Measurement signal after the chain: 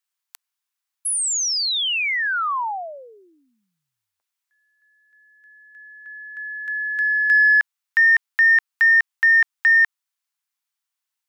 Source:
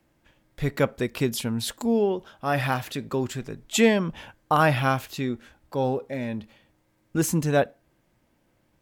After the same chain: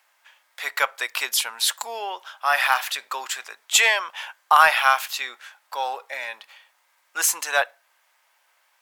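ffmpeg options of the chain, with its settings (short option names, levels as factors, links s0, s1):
-filter_complex "[0:a]highpass=f=880:w=0.5412,highpass=f=880:w=1.3066,asplit=2[s0][s1];[s1]asoftclip=type=tanh:threshold=0.0708,volume=0.335[s2];[s0][s2]amix=inputs=2:normalize=0,volume=2.37"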